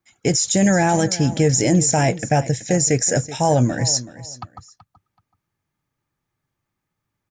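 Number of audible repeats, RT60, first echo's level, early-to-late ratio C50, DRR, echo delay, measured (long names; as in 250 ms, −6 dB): 2, no reverb audible, −16.0 dB, no reverb audible, no reverb audible, 378 ms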